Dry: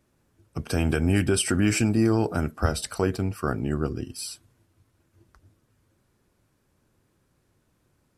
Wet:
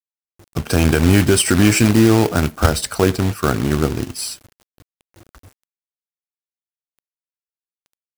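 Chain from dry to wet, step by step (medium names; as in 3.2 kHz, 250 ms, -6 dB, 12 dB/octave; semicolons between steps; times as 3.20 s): companded quantiser 4-bit; trim +8.5 dB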